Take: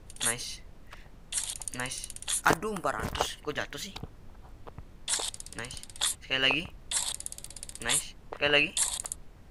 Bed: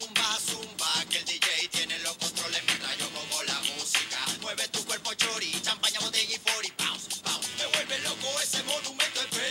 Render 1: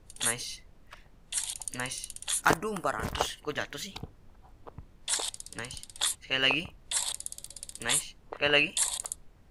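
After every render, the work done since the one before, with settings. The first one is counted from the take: noise print and reduce 6 dB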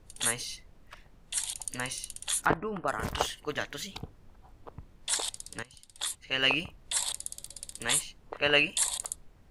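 2.46–2.88 s: distance through air 440 m; 5.63–6.48 s: fade in, from -17.5 dB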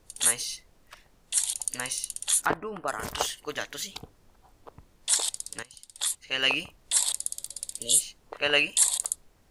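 tone controls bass -6 dB, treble +7 dB; 7.71–8.03 s: spectral replace 610–2800 Hz both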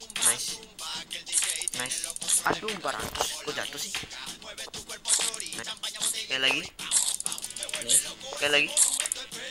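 add bed -8 dB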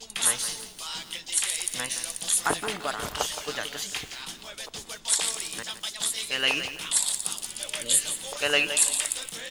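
delay 253 ms -22.5 dB; bit-crushed delay 169 ms, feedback 35%, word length 7-bit, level -10 dB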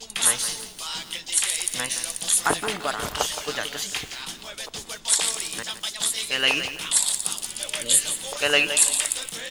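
trim +3.5 dB

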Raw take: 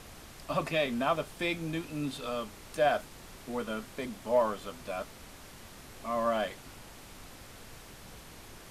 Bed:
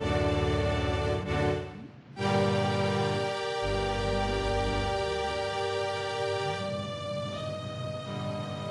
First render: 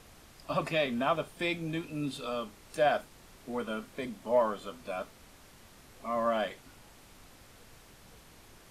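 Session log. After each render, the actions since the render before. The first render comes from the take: noise print and reduce 6 dB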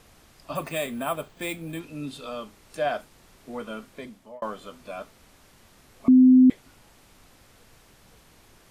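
0.55–1.80 s: careless resampling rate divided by 4×, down filtered, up hold; 3.73–4.42 s: fade out equal-power; 6.08–6.50 s: bleep 256 Hz -10.5 dBFS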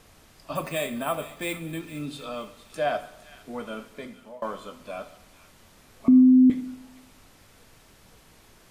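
feedback echo behind a high-pass 460 ms, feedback 34%, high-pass 1.8 kHz, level -13.5 dB; two-slope reverb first 0.79 s, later 2.2 s, from -25 dB, DRR 9.5 dB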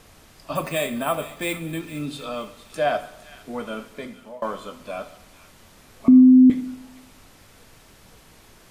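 trim +4 dB

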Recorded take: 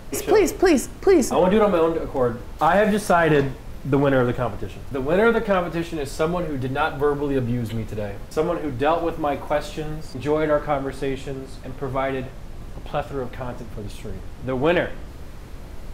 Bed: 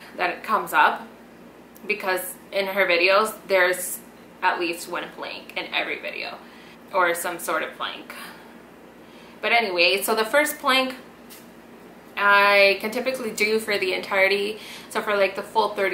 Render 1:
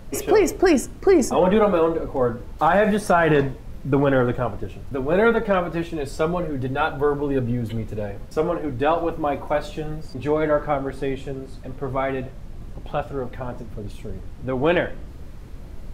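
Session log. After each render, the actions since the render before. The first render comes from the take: noise reduction 6 dB, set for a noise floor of -37 dBFS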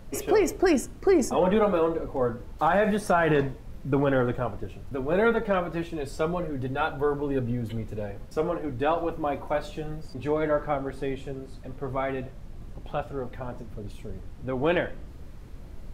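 trim -5 dB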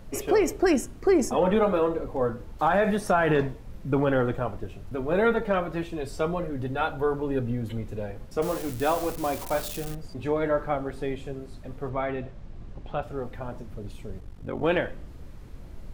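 8.42–9.95 s: zero-crossing glitches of -25.5 dBFS; 11.89–13.03 s: distance through air 75 m; 14.19–14.63 s: ring modulator 24 Hz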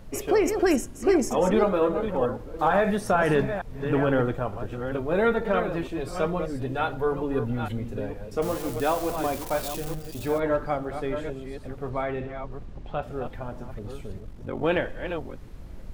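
chunks repeated in reverse 452 ms, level -8 dB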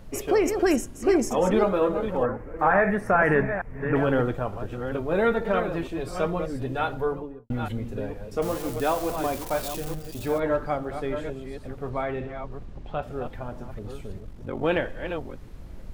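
2.23–3.96 s: resonant high shelf 2.7 kHz -10.5 dB, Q 3; 6.95–7.50 s: studio fade out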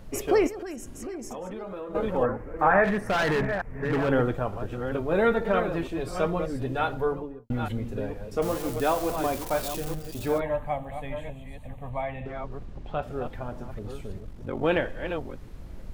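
0.47–1.95 s: compression, threshold -34 dBFS; 2.84–4.09 s: hard clipper -21.5 dBFS; 10.41–12.26 s: static phaser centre 1.4 kHz, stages 6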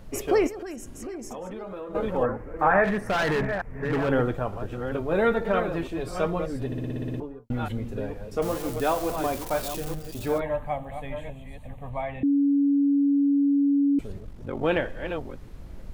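6.66 s: stutter in place 0.06 s, 9 plays; 12.23–13.99 s: bleep 282 Hz -18 dBFS

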